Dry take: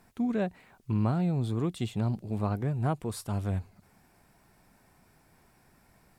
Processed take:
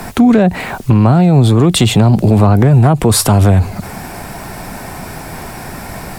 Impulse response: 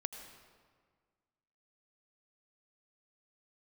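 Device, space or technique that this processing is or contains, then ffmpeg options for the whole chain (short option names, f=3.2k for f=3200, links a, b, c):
mastering chain: -filter_complex "[0:a]equalizer=f=710:t=o:w=0.74:g=3,acrossover=split=130|270[a][b][c];[a]acompressor=threshold=-32dB:ratio=4[d];[b]acompressor=threshold=-35dB:ratio=4[e];[c]acompressor=threshold=-33dB:ratio=4[f];[d][e][f]amix=inputs=3:normalize=0,acompressor=threshold=-36dB:ratio=2,asoftclip=type=hard:threshold=-28.5dB,alimiter=level_in=36dB:limit=-1dB:release=50:level=0:latency=1,volume=-1dB"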